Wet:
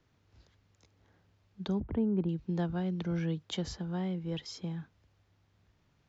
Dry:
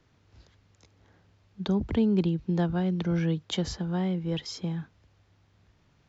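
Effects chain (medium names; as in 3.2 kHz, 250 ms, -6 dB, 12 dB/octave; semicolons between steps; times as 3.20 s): 1.80–2.29 s: low-pass 1.4 kHz 12 dB/octave; trim -6 dB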